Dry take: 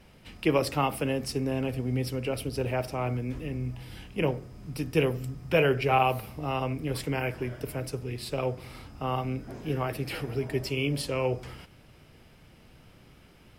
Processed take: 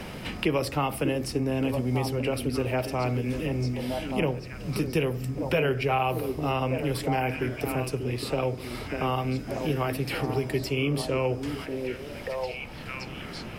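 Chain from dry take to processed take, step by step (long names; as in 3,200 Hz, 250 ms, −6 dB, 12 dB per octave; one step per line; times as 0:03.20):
echo through a band-pass that steps 590 ms, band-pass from 270 Hz, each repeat 1.4 octaves, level −5 dB
in parallel at −1.5 dB: brickwall limiter −17.5 dBFS, peak gain reduction 6.5 dB
on the sum: multiband upward and downward compressor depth 70%
level −3.5 dB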